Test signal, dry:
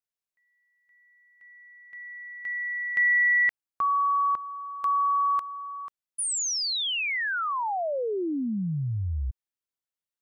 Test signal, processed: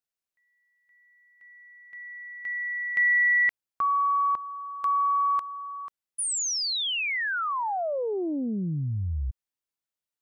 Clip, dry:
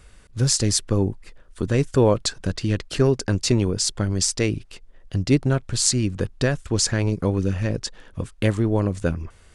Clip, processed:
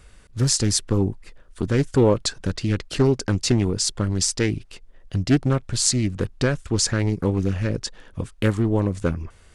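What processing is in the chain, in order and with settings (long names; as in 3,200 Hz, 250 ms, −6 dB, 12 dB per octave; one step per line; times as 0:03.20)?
highs frequency-modulated by the lows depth 0.32 ms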